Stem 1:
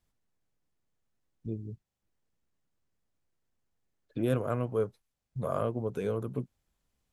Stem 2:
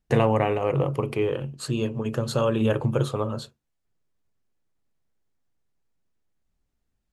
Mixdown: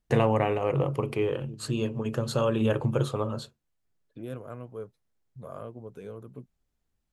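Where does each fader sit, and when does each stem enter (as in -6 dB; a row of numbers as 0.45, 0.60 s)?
-9.5, -2.5 dB; 0.00, 0.00 s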